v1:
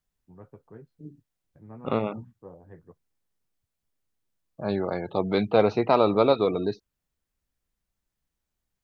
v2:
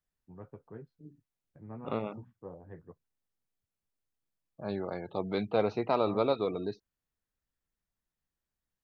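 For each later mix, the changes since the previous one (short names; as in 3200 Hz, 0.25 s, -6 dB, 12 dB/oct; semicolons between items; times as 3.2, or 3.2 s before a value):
second voice -8.0 dB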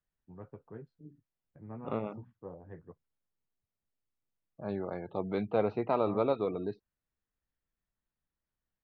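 second voice: add air absorption 330 m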